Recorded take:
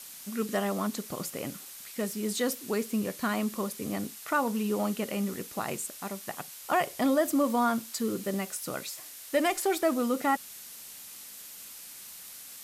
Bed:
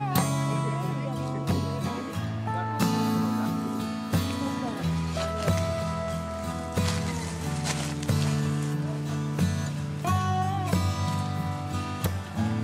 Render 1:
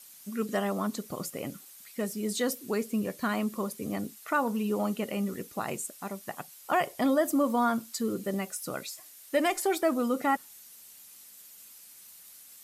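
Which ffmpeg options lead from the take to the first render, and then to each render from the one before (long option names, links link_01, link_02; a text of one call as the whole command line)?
ffmpeg -i in.wav -af "afftdn=noise_reduction=9:noise_floor=-46" out.wav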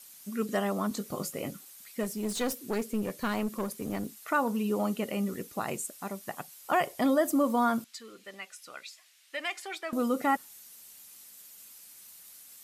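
ffmpeg -i in.wav -filter_complex "[0:a]asettb=1/sr,asplit=3[link_01][link_02][link_03];[link_01]atrim=end=0.894[link_04];[link_02]atrim=start=0.89:end=1.51,asetpts=PTS-STARTPTS,afade=type=in:duration=0.004:curve=qsin,afade=type=out:start_time=0.616:duration=0.004:curve=qsin,asplit=2[link_05][link_06];[link_06]adelay=20,volume=-6.5dB[link_07];[link_05][link_07]amix=inputs=2:normalize=0,atrim=end_sample=27342[link_08];[link_03]atrim=start=1.506[link_09];[link_04][link_08]acrossfade=duration=0.004:curve1=hsin:curve2=qsin[link_10];[link_10][link_09]acrossfade=duration=0.004:curve1=qsin:curve2=hsin,asettb=1/sr,asplit=3[link_11][link_12][link_13];[link_11]atrim=end=2.034[link_14];[link_12]atrim=start=2.03:end=4.18,asetpts=PTS-STARTPTS,afade=type=in:duration=0.004:curve=qsin,afade=type=out:start_time=2.146:duration=0.004:curve=qsin,aeval=exprs='clip(val(0),-1,0.0211)':channel_layout=same[link_15];[link_13]atrim=start=4.176[link_16];[link_14][link_15]acrossfade=duration=0.004:curve1=hsin:curve2=qsin[link_17];[link_17][link_16]acrossfade=duration=0.004:curve1=qsin:curve2=hsin,asettb=1/sr,asplit=3[link_18][link_19][link_20];[link_18]atrim=end=7.844[link_21];[link_19]atrim=start=7.84:end=9.93,asetpts=PTS-STARTPTS,afade=type=in:duration=0.004:curve=qsin,afade=type=out:start_time=2.086:duration=0.004:curve=qsin,bandpass=frequency=2600:width_type=q:width=1.1[link_22];[link_20]atrim=start=9.926[link_23];[link_21][link_22]acrossfade=duration=0.004:curve1=hsin:curve2=qsin[link_24];[link_24][link_23]acrossfade=duration=0.004:curve1=qsin:curve2=hsin" out.wav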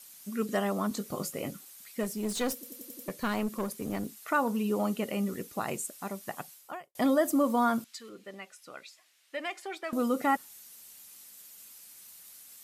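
ffmpeg -i in.wav -filter_complex "[0:a]asettb=1/sr,asplit=3[link_01][link_02][link_03];[link_01]atrim=end=8.094[link_04];[link_02]atrim=start=8.09:end=9.84,asetpts=PTS-STARTPTS,afade=type=in:duration=0.004:curve=qsin,afade=type=out:start_time=1.746:duration=0.004:curve=qsin,tiltshelf=frequency=930:gain=5.5[link_05];[link_03]atrim=start=9.836[link_06];[link_04][link_05]acrossfade=duration=0.004:curve1=hsin:curve2=qsin[link_07];[link_07][link_06]acrossfade=duration=0.004:curve1=qsin:curve2=hsin,asplit=8[link_08][link_09][link_10][link_11][link_12][link_13][link_14][link_15];[link_08]atrim=end=2.632[link_16];[link_09]atrim=start=2.538:end=2.632[link_17];[link_10]atrim=start=2.538:end=2.632[link_18];[link_11]atrim=start=2.538:end=2.632[link_19];[link_12]atrim=start=2.538:end=2.632[link_20];[link_13]atrim=start=2.538:end=2.632[link_21];[link_14]atrim=start=3.078:end=6.95,asetpts=PTS-STARTPTS,afade=type=out:start_time=3.412:duration=0.46:curve=qua[link_22];[link_15]atrim=start=6.95,asetpts=PTS-STARTPTS,afade=type=in:duration=0.004:curve=hsin[link_23];[link_16][link_17]acrossfade=duration=0.004:curve1=hsin:curve2=hsin[link_24];[link_24][link_18]acrossfade=duration=0.004:curve1=hsin:curve2=hsin[link_25];[link_25][link_19]acrossfade=duration=0.004:curve1=hsin:curve2=hsin[link_26];[link_26][link_20]acrossfade=duration=0.004:curve1=hsin:curve2=hsin[link_27];[link_27][link_21]acrossfade=duration=0.004:curve1=hsin:curve2=hsin[link_28];[link_22][link_23]concat=n=2:v=0:a=1[link_29];[link_28][link_29]acrossfade=duration=0.004:curve1=hsin:curve2=hsin" out.wav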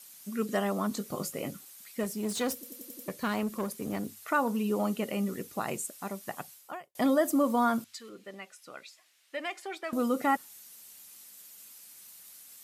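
ffmpeg -i in.wav -af "highpass=57,bandreject=frequency=50:width_type=h:width=6,bandreject=frequency=100:width_type=h:width=6" out.wav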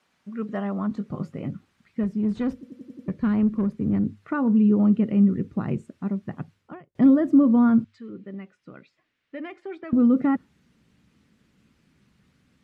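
ffmpeg -i in.wav -af "lowpass=1800,asubboost=boost=11:cutoff=220" out.wav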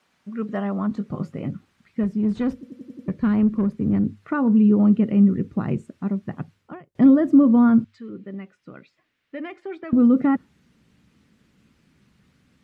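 ffmpeg -i in.wav -af "volume=2.5dB" out.wav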